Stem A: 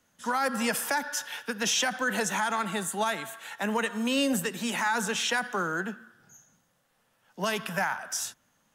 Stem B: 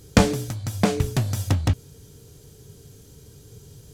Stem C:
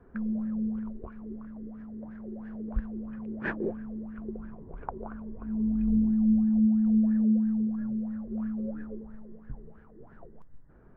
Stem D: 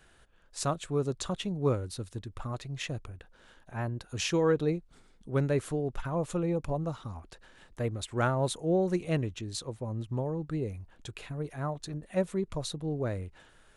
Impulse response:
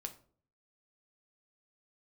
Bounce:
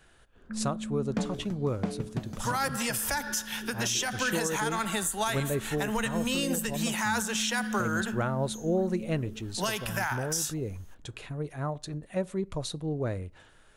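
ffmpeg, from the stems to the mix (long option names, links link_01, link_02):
-filter_complex "[0:a]highshelf=frequency=3600:gain=8.5,adelay=2200,volume=1.5dB[link_01];[1:a]lowpass=frequency=1800:poles=1,lowshelf=frequency=130:width_type=q:width=3:gain=-8,adelay=1000,volume=-9.5dB[link_02];[2:a]alimiter=limit=-24dB:level=0:latency=1,adelay=350,volume=-3.5dB[link_03];[3:a]volume=-0.5dB,asplit=2[link_04][link_05];[link_05]volume=-11dB[link_06];[4:a]atrim=start_sample=2205[link_07];[link_06][link_07]afir=irnorm=-1:irlink=0[link_08];[link_01][link_02][link_03][link_04][link_08]amix=inputs=5:normalize=0,alimiter=limit=-19dB:level=0:latency=1:release=290"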